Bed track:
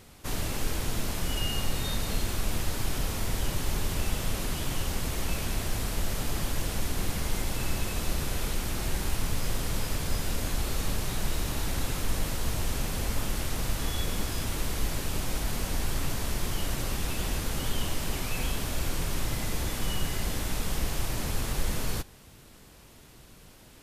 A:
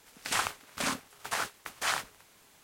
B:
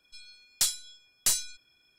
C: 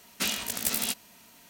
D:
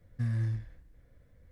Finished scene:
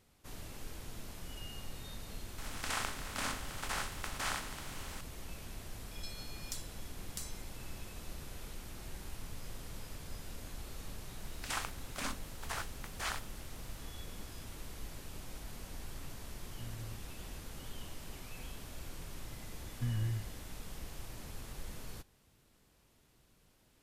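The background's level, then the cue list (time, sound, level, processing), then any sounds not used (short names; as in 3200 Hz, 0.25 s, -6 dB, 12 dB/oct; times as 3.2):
bed track -16 dB
2.38 add A -10.5 dB + per-bin compression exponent 0.4
5.91 add B -16.5 dB + three-band squash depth 100%
11.18 add A -8.5 dB
16.4 add D -17 dB
19.62 add D -4.5 dB + vibrato 4.7 Hz 67 cents
not used: C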